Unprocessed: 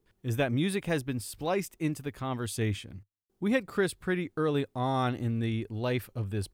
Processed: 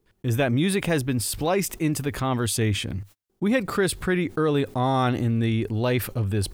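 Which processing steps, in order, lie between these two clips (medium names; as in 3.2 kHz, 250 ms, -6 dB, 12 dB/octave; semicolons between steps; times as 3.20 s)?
gate -58 dBFS, range -40 dB; level flattener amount 50%; trim +4 dB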